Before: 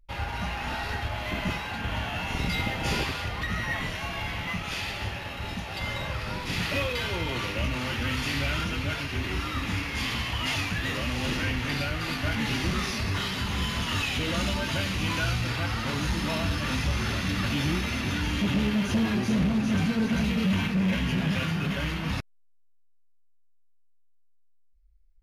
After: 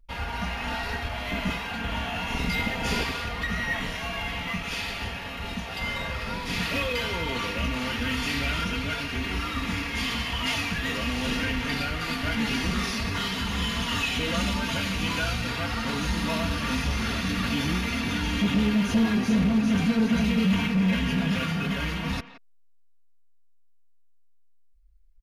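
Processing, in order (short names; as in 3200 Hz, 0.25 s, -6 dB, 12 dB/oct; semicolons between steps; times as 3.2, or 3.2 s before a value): comb 4.3 ms, depth 52%; speakerphone echo 0.17 s, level -14 dB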